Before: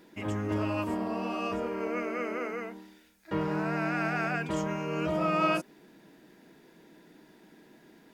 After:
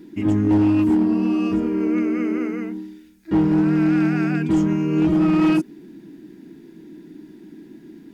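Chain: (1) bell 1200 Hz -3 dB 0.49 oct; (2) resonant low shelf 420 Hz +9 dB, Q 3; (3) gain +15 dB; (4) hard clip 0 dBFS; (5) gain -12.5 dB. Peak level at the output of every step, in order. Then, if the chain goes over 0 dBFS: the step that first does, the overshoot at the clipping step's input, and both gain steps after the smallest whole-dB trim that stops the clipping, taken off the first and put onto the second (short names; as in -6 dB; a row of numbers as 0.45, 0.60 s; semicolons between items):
-15.5, -8.5, +6.5, 0.0, -12.5 dBFS; step 3, 6.5 dB; step 3 +8 dB, step 5 -5.5 dB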